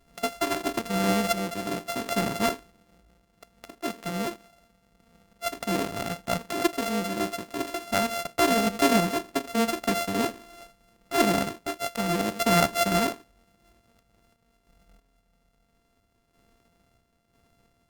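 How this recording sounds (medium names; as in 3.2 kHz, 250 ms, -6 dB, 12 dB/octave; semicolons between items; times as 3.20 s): a buzz of ramps at a fixed pitch in blocks of 64 samples; random-step tremolo 3 Hz, depth 65%; Opus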